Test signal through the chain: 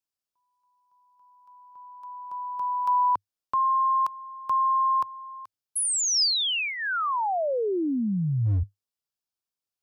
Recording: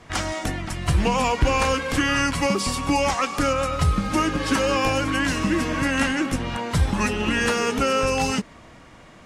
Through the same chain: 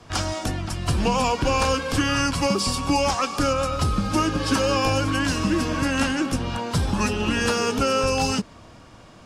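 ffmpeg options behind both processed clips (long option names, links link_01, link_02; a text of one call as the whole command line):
ffmpeg -i in.wav -filter_complex "[0:a]equalizer=frequency=100:width_type=o:width=0.33:gain=6,equalizer=frequency=2000:width_type=o:width=0.33:gain=-9,equalizer=frequency=5000:width_type=o:width=0.33:gain=5,acrossover=split=170|1500|1700[link_01][link_02][link_03][link_04];[link_01]asoftclip=type=hard:threshold=-21.5dB[link_05];[link_05][link_02][link_03][link_04]amix=inputs=4:normalize=0" out.wav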